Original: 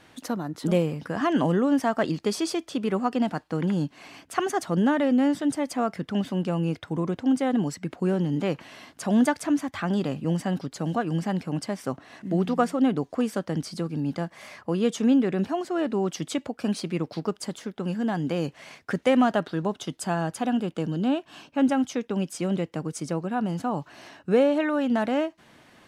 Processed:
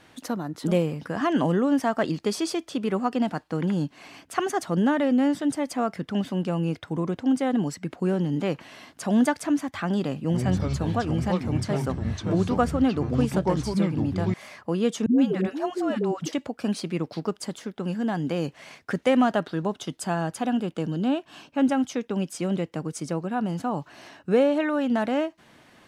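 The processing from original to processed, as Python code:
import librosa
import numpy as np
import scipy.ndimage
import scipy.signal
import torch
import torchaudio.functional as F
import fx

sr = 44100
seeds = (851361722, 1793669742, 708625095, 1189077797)

y = fx.echo_pitch(x, sr, ms=83, semitones=-5, count=3, db_per_echo=-3.0, at=(10.21, 14.34))
y = fx.dispersion(y, sr, late='highs', ms=125.0, hz=370.0, at=(15.06, 16.33))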